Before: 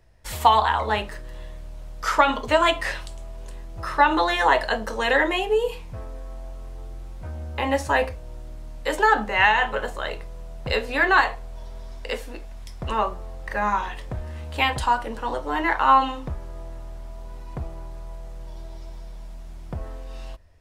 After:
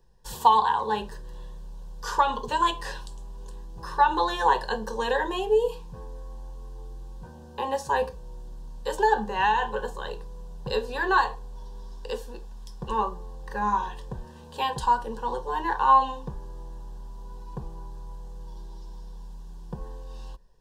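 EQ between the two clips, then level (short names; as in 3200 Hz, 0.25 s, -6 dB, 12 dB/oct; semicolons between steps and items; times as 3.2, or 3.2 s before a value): Butterworth band-stop 1300 Hz, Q 4.3; bell 11000 Hz -5.5 dB 1.1 oct; fixed phaser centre 430 Hz, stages 8; 0.0 dB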